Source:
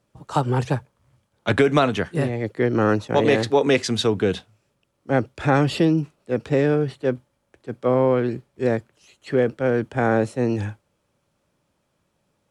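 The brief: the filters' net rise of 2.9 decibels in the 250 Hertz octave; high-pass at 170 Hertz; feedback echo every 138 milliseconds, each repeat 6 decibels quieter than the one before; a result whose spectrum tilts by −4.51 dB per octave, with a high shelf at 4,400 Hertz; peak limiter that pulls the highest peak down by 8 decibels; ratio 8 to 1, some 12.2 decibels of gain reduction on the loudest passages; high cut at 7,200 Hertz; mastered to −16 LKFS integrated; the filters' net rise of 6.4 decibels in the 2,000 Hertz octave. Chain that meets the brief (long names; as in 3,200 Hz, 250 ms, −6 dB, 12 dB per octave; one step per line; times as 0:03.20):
high-pass filter 170 Hz
low-pass filter 7,200 Hz
parametric band 250 Hz +4.5 dB
parametric band 2,000 Hz +9 dB
high-shelf EQ 4,400 Hz −4 dB
downward compressor 8 to 1, threshold −23 dBFS
brickwall limiter −18 dBFS
repeating echo 138 ms, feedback 50%, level −6 dB
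level +13 dB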